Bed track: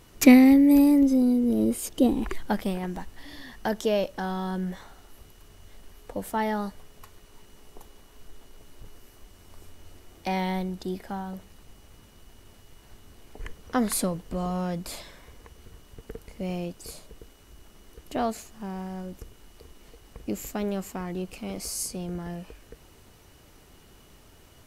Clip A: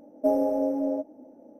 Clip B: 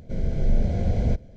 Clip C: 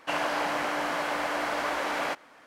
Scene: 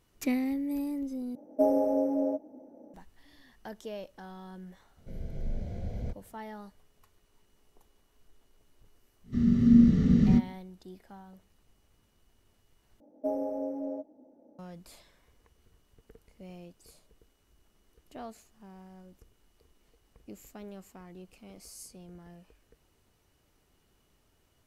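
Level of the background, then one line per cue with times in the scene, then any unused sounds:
bed track -15.5 dB
1.35 replace with A -1.5 dB
4.97 add B -13.5 dB
9.23 add B -0.5 dB, fades 0.10 s + frequency shift -260 Hz
13 replace with A -8.5 dB + high shelf 5800 Hz -5 dB
not used: C

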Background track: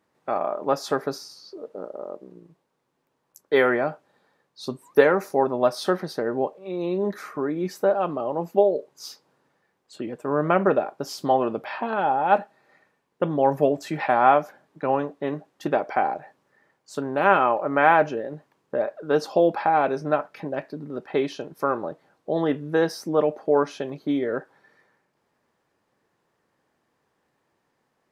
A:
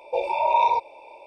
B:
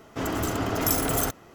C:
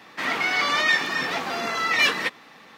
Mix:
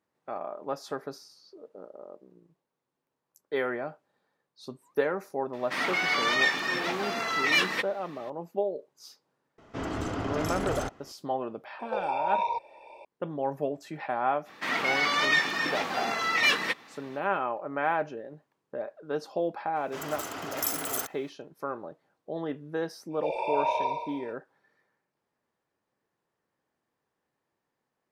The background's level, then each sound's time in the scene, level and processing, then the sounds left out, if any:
background track -10.5 dB
5.53 add C -4 dB
9.58 add B -4.5 dB + air absorption 93 m
11.79 add A -8.5 dB + three-band squash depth 40%
14.44 add C -3.5 dB, fades 0.05 s
19.76 add B -4.5 dB + HPF 870 Hz 6 dB/oct
23.09 add A -8 dB, fades 0.05 s + flutter echo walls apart 10 m, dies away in 1.1 s

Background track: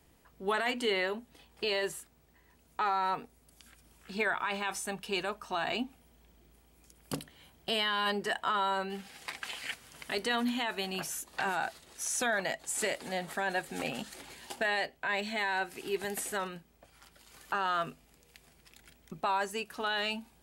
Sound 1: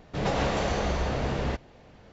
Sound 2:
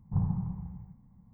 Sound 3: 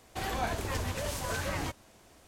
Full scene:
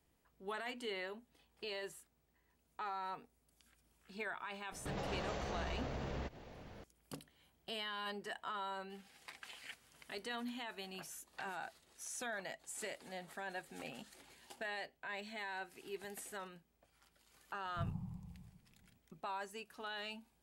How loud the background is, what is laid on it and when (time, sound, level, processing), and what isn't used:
background track -12.5 dB
4.72 add 1 -1.5 dB + compressor 3:1, threshold -41 dBFS
17.65 add 2 -13 dB
not used: 3

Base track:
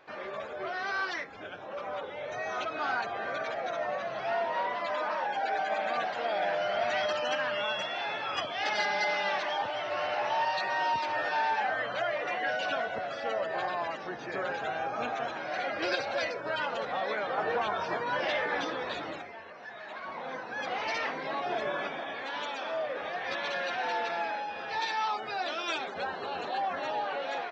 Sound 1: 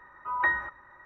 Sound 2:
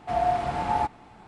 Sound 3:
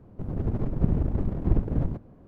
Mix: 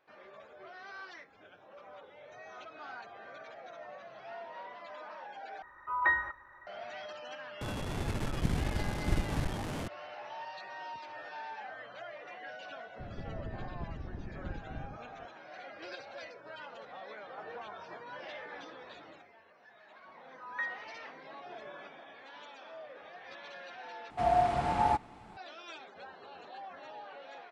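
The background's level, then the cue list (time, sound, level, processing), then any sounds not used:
base track -14.5 dB
5.62 replace with 1 -2 dB + bell 200 Hz -6 dB 1.2 oct
7.61 add 3 -8 dB + delta modulation 64 kbps, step -23.5 dBFS
12.99 add 3 -17.5 dB + three-band squash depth 100%
20.15 add 1 -9.5 dB + HPF 1300 Hz
24.1 replace with 2 -2.5 dB

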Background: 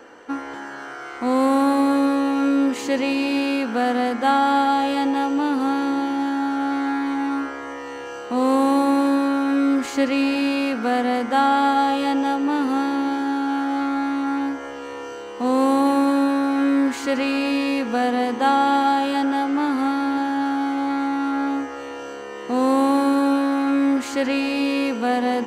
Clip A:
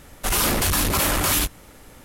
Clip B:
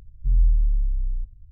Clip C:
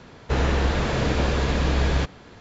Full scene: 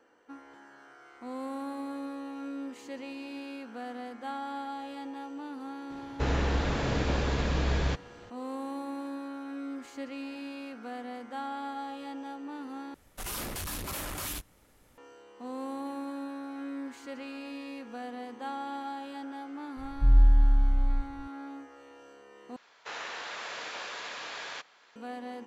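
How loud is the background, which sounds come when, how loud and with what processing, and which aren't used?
background -19.5 dB
5.9 add C -6.5 dB
12.94 replace with A -16 dB
19.77 add B -1 dB
22.56 replace with C -8 dB + HPF 980 Hz

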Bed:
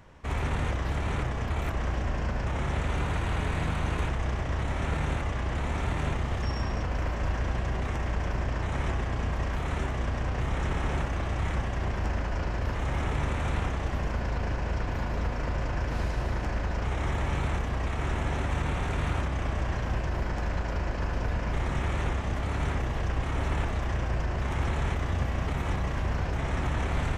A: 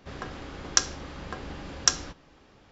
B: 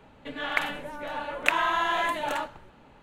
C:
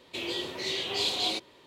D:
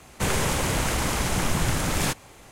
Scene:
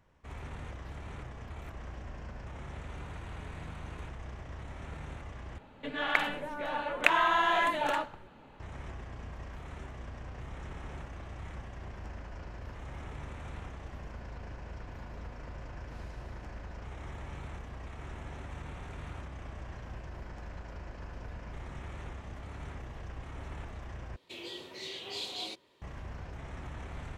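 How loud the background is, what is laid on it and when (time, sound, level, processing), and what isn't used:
bed -14 dB
5.58 replace with B -0.5 dB + high shelf 7800 Hz -8.5 dB
24.16 replace with C -10 dB
not used: A, D

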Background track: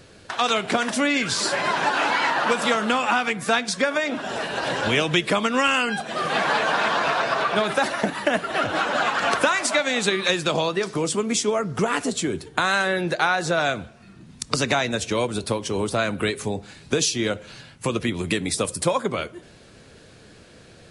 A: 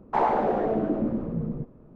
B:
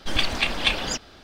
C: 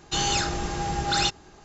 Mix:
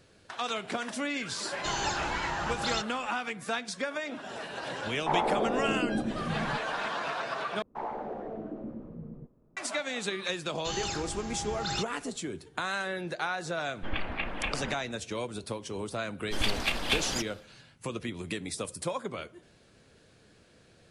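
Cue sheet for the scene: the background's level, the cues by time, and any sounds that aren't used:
background track -11.5 dB
1.52 add C -9.5 dB
4.93 add A -5 dB
7.62 replace with A -13.5 dB
10.53 add C -10 dB
13.77 add B -7 dB + LPF 2500 Hz 24 dB/oct
16.25 add B -5 dB, fades 0.10 s + CVSD 64 kbps

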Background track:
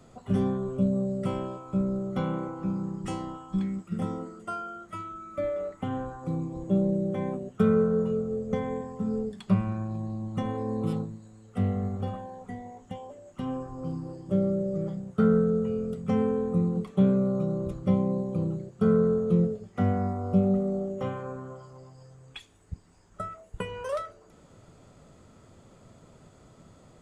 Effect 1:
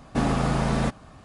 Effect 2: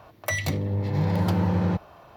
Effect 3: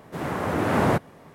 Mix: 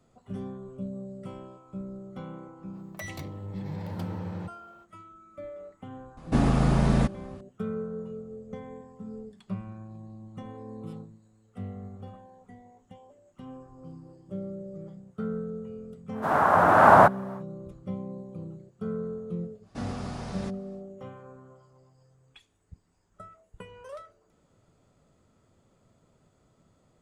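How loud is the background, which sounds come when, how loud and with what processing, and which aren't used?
background track -11 dB
2.71 add 2 -12.5 dB, fades 0.05 s
6.17 add 1 -4 dB + low shelf 310 Hz +8 dB
16.1 add 3 -3.5 dB, fades 0.10 s + band shelf 980 Hz +14.5 dB
19.6 add 1 -14.5 dB, fades 0.10 s + bell 5200 Hz +7 dB 0.9 oct

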